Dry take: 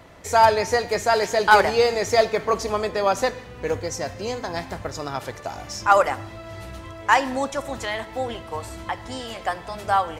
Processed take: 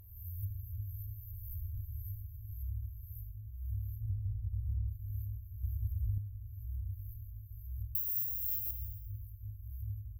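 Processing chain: spectral swells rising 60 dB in 1.08 s; 4.01–4.88 tilt shelf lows +9 dB; 7.95–8.71 careless resampling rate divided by 6×, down filtered, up zero stuff; FFT band-reject 110–12000 Hz; plate-style reverb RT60 3.3 s, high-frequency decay 0.3×, DRR 4.5 dB; compressor 6:1, threshold -28 dBFS, peak gain reduction 13.5 dB; 5.63–6.18 bell 71 Hz +10 dB 2.4 oct; gain -3.5 dB

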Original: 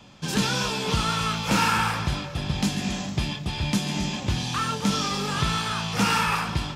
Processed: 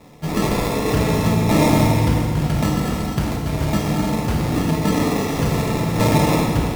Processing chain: sample-and-hold 29×; FDN reverb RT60 2.2 s, low-frequency decay 1.4×, high-frequency decay 0.8×, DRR 0 dB; gain +3 dB

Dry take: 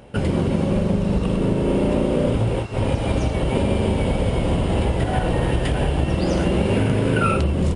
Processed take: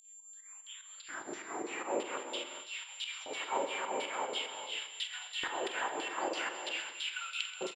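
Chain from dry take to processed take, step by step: tape start at the beginning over 2.03 s; resonant low shelf 700 Hz -10 dB, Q 1.5; upward compressor, threshold -33 dBFS; bit-crush 11-bit; LFO band-pass saw down 3 Hz 400–4200 Hz; hum 50 Hz, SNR 20 dB; LFO high-pass square 0.46 Hz 350–3300 Hz; whine 7300 Hz -51 dBFS; pump 148 bpm, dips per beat 2, -15 dB, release 0.139 s; tapped delay 46/130/218 ms -12/-14.5/-16 dB; non-linear reverb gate 0.47 s rising, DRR 8.5 dB

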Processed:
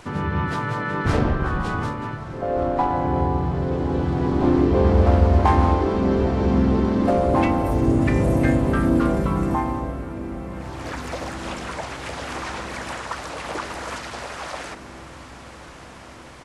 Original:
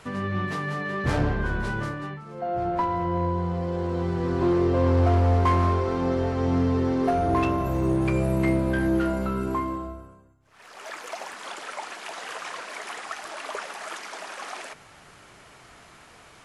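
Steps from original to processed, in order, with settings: harmoniser -5 st 0 dB, -3 st -2 dB, +3 st -16 dB; diffused feedback echo 1.204 s, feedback 69%, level -15.5 dB

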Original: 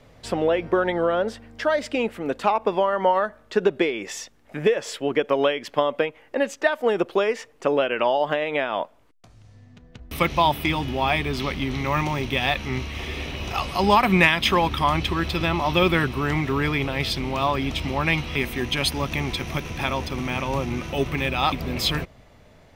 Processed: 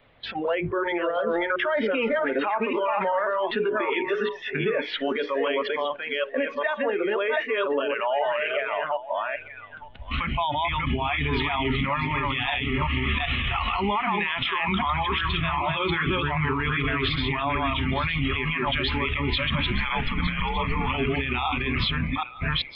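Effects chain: reverse delay 0.39 s, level -2 dB; steep low-pass 3700 Hz 48 dB/oct; notches 60/120/180/240/300/360/420/480 Hz; harmonic-percussive split percussive +5 dB; in parallel at +1.5 dB: negative-ratio compressor -24 dBFS, ratio -0.5; on the sum: limiter -10.5 dBFS, peak gain reduction 12 dB; 19.72–20.87 frequency shift -80 Hz; thinning echo 0.912 s, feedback 36%, high-pass 410 Hz, level -9.5 dB; spectral noise reduction 17 dB; mismatched tape noise reduction encoder only; gain -5 dB

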